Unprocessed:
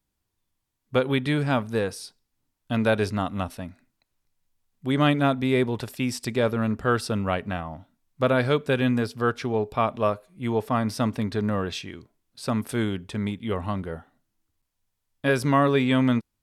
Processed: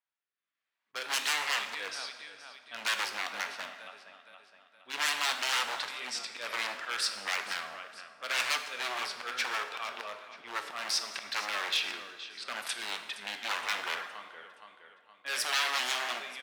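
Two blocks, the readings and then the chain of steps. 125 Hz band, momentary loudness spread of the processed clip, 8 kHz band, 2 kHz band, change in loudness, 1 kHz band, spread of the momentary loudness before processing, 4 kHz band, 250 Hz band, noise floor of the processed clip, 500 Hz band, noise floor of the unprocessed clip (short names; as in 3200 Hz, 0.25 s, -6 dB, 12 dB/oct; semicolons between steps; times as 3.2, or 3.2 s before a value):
under -40 dB, 15 LU, +5.0 dB, -0.5 dB, -7.5 dB, -7.0 dB, 12 LU, +4.0 dB, -31.5 dB, under -85 dBFS, -20.5 dB, -79 dBFS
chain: AGC gain up to 11.5 dB; rotary speaker horn 0.7 Hz; low-pass opened by the level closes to 1900 Hz, open at -10 dBFS; flange 0.7 Hz, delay 7.5 ms, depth 9.4 ms, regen +84%; compressor 2.5:1, threshold -23 dBFS, peak gain reduction 7.5 dB; auto swell 0.182 s; on a send: feedback echo 0.468 s, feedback 47%, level -15 dB; on the sum: wavefolder -27 dBFS; HPF 1500 Hz 12 dB/oct; plate-style reverb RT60 1.5 s, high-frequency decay 0.75×, DRR 7 dB; gain +7.5 dB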